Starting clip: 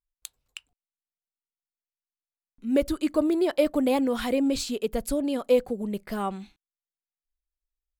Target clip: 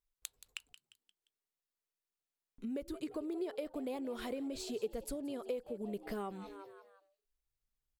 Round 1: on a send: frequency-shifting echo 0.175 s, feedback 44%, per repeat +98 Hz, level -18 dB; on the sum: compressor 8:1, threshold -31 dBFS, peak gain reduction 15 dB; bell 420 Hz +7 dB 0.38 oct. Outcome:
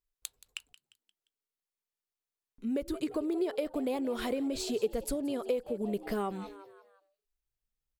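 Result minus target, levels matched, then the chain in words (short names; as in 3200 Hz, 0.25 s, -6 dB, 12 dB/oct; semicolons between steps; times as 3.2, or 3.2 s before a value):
compressor: peak gain reduction -7.5 dB
on a send: frequency-shifting echo 0.175 s, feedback 44%, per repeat +98 Hz, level -18 dB; on the sum: compressor 8:1, threshold -39.5 dBFS, peak gain reduction 22.5 dB; bell 420 Hz +7 dB 0.38 oct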